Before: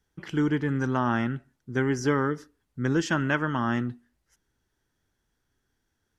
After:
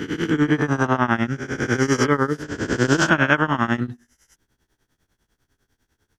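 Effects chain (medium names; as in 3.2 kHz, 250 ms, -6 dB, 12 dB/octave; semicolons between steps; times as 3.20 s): reverse spectral sustain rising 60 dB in 1.74 s; tremolo triangle 10 Hz, depth 95%; trim +8.5 dB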